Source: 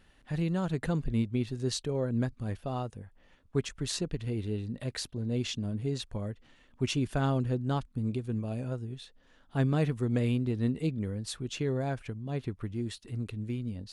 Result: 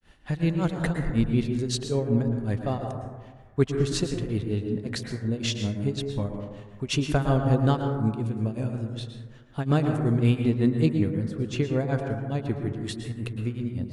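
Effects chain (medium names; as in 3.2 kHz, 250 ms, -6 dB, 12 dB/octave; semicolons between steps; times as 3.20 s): granulator 217 ms, grains 5.4 per s, spray 31 ms, pitch spread up and down by 0 st; plate-style reverb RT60 1.4 s, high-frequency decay 0.25×, pre-delay 100 ms, DRR 4 dB; trim +8 dB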